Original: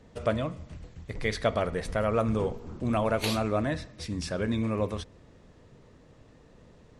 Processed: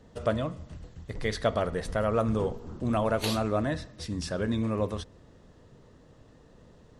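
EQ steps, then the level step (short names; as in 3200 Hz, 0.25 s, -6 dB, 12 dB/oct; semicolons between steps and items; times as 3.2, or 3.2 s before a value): bell 2300 Hz -7.5 dB 0.26 oct; 0.0 dB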